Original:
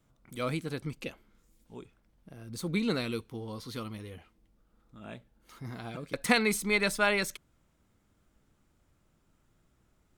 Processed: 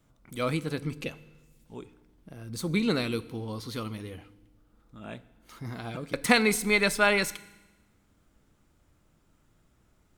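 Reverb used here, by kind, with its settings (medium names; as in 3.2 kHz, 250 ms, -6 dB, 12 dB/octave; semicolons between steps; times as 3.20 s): FDN reverb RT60 1.1 s, low-frequency decay 1.45×, high-frequency decay 1×, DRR 16 dB; trim +3.5 dB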